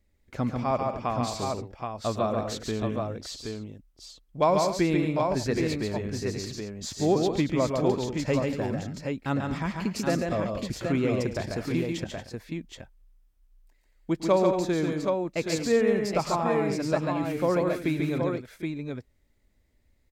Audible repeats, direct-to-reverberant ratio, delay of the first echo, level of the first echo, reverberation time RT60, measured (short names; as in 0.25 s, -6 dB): 5, none, 0.107 s, -17.0 dB, none